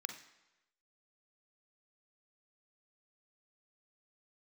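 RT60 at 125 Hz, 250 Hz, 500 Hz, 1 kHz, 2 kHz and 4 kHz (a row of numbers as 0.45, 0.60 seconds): 0.95, 0.85, 1.0, 1.0, 1.0, 0.90 seconds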